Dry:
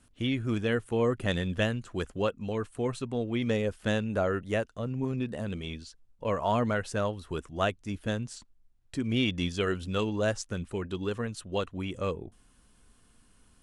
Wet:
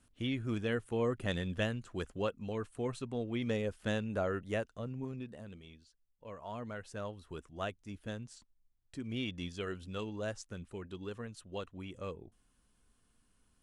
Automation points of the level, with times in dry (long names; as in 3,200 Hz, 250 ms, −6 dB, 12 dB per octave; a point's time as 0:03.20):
0:04.75 −6 dB
0:05.76 −18 dB
0:06.34 −18 dB
0:07.15 −10.5 dB